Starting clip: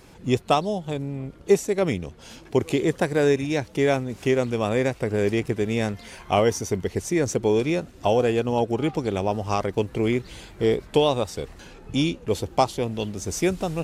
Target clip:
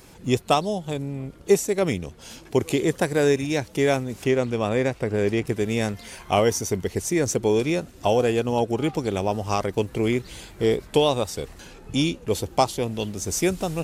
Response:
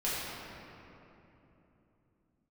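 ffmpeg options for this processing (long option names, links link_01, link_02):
-af "asetnsamples=nb_out_samples=441:pad=0,asendcmd='4.24 highshelf g -2.5;5.47 highshelf g 8.5',highshelf=frequency=6600:gain=9"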